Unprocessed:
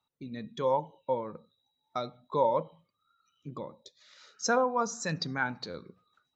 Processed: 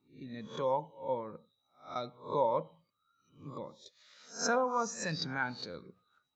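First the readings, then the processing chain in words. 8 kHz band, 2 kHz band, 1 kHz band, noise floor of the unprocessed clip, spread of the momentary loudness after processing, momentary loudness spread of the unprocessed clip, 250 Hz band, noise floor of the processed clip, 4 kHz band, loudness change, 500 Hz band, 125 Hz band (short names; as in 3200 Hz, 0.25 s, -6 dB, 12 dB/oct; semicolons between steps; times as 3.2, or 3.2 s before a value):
n/a, -3.0 dB, -3.5 dB, -82 dBFS, 17 LU, 17 LU, -3.5 dB, -80 dBFS, -1.5 dB, -3.5 dB, -3.5 dB, -4.0 dB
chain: spectral swells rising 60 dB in 0.37 s; gain -4.5 dB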